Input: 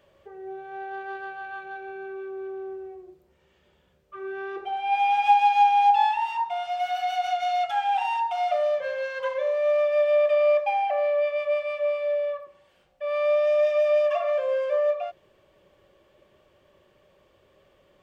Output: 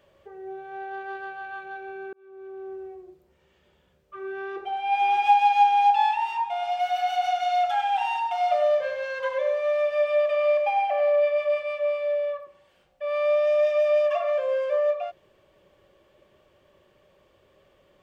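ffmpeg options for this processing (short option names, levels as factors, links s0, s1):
-filter_complex "[0:a]asplit=2[s0][s1];[s1]afade=t=in:st=4.42:d=0.01,afade=t=out:st=5.56:d=0.01,aecho=0:1:590|1180|1770|2360:0.199526|0.0798105|0.0319242|0.0127697[s2];[s0][s2]amix=inputs=2:normalize=0,asplit=3[s3][s4][s5];[s3]afade=t=out:st=6.61:d=0.02[s6];[s4]aecho=1:1:99:0.447,afade=t=in:st=6.61:d=0.02,afade=t=out:st=11.61:d=0.02[s7];[s5]afade=t=in:st=11.61:d=0.02[s8];[s6][s7][s8]amix=inputs=3:normalize=0,asplit=2[s9][s10];[s9]atrim=end=2.13,asetpts=PTS-STARTPTS,afade=t=out:st=2.126:d=0.004:c=hsin[s11];[s10]atrim=start=2.13,asetpts=PTS-STARTPTS,afade=t=in:d=0.67[s12];[s11][s12]concat=n=2:v=0:a=1"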